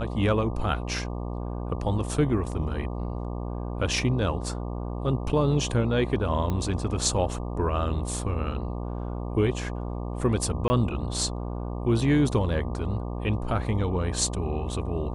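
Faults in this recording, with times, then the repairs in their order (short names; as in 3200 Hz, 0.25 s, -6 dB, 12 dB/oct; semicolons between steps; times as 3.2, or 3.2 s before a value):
buzz 60 Hz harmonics 20 -32 dBFS
6.5 pop -17 dBFS
10.68–10.7 gap 20 ms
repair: de-click; de-hum 60 Hz, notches 20; interpolate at 10.68, 20 ms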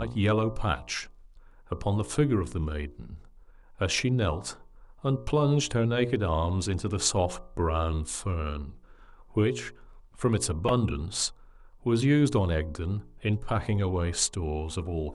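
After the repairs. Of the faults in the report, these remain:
none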